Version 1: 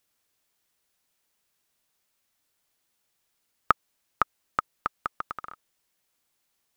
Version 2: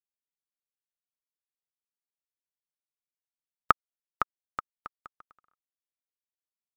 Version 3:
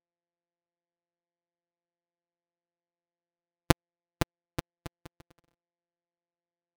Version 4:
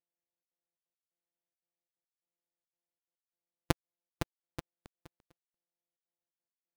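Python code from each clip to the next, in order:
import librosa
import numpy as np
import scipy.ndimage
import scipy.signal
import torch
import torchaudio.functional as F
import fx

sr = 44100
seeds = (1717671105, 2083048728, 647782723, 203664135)

y1 = fx.upward_expand(x, sr, threshold_db=-39.0, expansion=2.5)
y2 = np.r_[np.sort(y1[:len(y1) // 256 * 256].reshape(-1, 256), axis=1).ravel(), y1[len(y1) // 256 * 256:]]
y3 = fx.step_gate(y2, sr, bpm=176, pattern='xxxxx.xxx.x..', floor_db=-60.0, edge_ms=4.5)
y3 = F.gain(torch.from_numpy(y3), -7.0).numpy()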